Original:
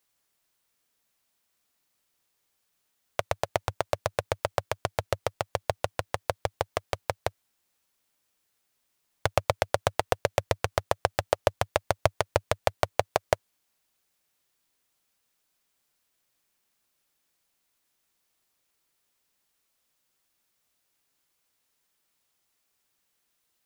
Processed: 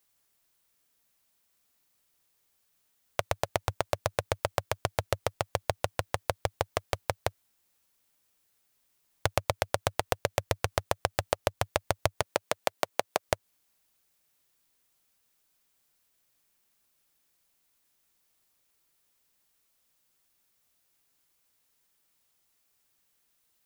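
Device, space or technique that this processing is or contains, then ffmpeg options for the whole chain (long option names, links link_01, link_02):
ASMR close-microphone chain: -filter_complex "[0:a]lowshelf=frequency=160:gain=4,acompressor=threshold=-22dB:ratio=6,highshelf=frequency=9300:gain=5,asettb=1/sr,asplit=3[link_01][link_02][link_03];[link_01]atrim=end=12.224[link_04];[link_02]atrim=start=12.22:end=13.28,asetpts=PTS-STARTPTS,afade=type=in:duration=0.004:curve=qsin,afade=type=out:start_time=1.056:duration=0.004:curve=qsin,highpass=frequency=180:width=0.5412,highpass=frequency=180:width=1.3066[link_05];[link_03]atrim=start=13.276[link_06];[link_04][link_05]acrossfade=duration=0.004:curve1=hsin:curve2=qsin[link_07];[link_07][link_06]acrossfade=duration=0.004:curve1=qsin:curve2=hsin"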